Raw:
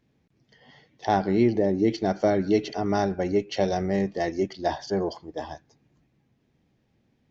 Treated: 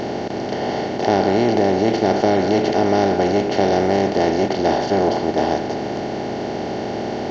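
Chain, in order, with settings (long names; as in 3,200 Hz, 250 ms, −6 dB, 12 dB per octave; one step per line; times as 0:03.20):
compressor on every frequency bin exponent 0.2
level −1 dB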